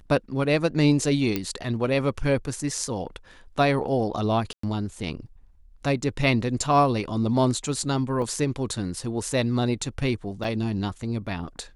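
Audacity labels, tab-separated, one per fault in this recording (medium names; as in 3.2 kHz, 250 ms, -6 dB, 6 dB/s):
1.360000	1.360000	pop -11 dBFS
4.530000	4.630000	dropout 104 ms
8.220000	8.220000	dropout 2.3 ms
10.440000	10.440000	dropout 4.1 ms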